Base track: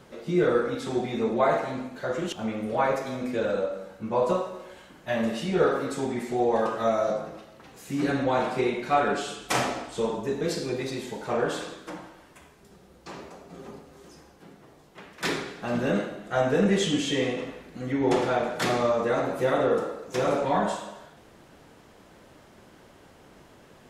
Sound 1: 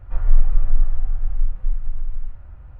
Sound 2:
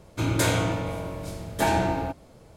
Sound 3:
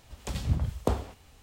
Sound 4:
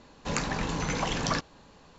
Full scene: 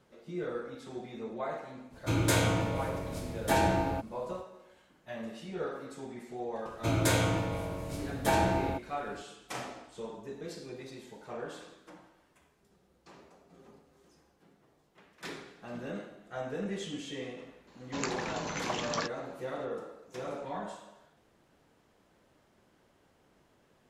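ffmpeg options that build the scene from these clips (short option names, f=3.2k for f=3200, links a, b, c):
-filter_complex "[2:a]asplit=2[a][b];[0:a]volume=-14dB[c];[4:a]highpass=f=240:p=1[d];[a]atrim=end=2.56,asetpts=PTS-STARTPTS,volume=-3.5dB,afade=t=in:d=0.05,afade=t=out:st=2.51:d=0.05,adelay=1890[e];[b]atrim=end=2.56,asetpts=PTS-STARTPTS,volume=-4dB,afade=t=in:d=0.004:c=hsin,afade=t=out:st=2.556:d=0.004:c=hsin,adelay=293706S[f];[d]atrim=end=1.98,asetpts=PTS-STARTPTS,volume=-4.5dB,afade=t=in:d=0.004:c=hsin,afade=t=out:st=1.976:d=0.004:c=hsin,adelay=17670[g];[c][e][f][g]amix=inputs=4:normalize=0"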